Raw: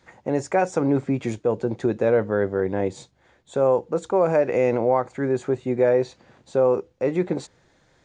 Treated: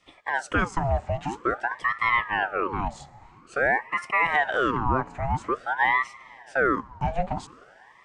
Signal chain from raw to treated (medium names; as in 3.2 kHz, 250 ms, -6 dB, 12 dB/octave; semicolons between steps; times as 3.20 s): Chebyshev high-pass 160 Hz, order 10; on a send at -18 dB: bass shelf 320 Hz -10.5 dB + reverberation RT60 5.4 s, pre-delay 30 ms; on the sum: ring modulator with a swept carrier 960 Hz, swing 65%, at 0.49 Hz